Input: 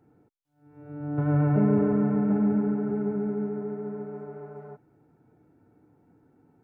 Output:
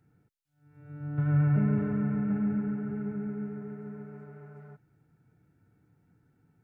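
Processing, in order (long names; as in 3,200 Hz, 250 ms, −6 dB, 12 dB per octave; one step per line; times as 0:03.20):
flat-topped bell 510 Hz −11.5 dB 2.5 octaves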